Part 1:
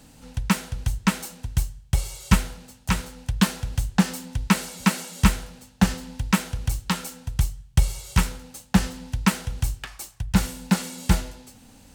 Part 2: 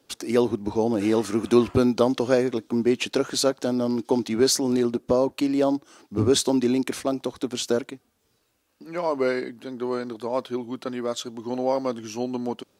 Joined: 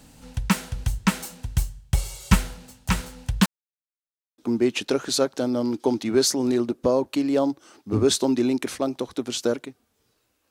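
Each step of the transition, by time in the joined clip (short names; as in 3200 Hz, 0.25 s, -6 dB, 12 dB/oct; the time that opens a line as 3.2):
part 1
3.46–4.38 mute
4.38 switch to part 2 from 2.63 s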